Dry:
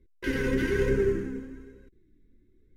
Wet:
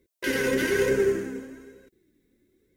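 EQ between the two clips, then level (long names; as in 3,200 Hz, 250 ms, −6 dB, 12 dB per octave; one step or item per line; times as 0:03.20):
high-pass filter 320 Hz 6 dB per octave
parametric band 640 Hz +12 dB 0.45 octaves
high-shelf EQ 4,400 Hz +11.5 dB
+3.5 dB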